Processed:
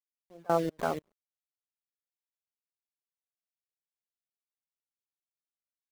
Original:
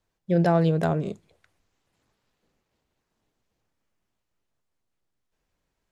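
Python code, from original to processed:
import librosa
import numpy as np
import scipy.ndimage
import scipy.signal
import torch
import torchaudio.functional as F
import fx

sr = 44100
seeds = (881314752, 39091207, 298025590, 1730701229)

y = np.where(x < 0.0, 10.0 ** (-12.0 / 20.0) * x, x)
y = scipy.signal.sosfilt(scipy.signal.butter(4, 190.0, 'highpass', fs=sr, output='sos'), y)
y = fx.hum_notches(y, sr, base_hz=60, count=10)
y = fx.spec_gate(y, sr, threshold_db=-20, keep='strong')
y = fx.low_shelf(y, sr, hz=340.0, db=-5.0)
y = np.where(np.abs(y) >= 10.0 ** (-34.5 / 20.0), y, 0.0)
y = fx.step_gate(y, sr, bpm=152, pattern='x....xx.x', floor_db=-24.0, edge_ms=4.5)
y = fx.dereverb_blind(y, sr, rt60_s=0.62)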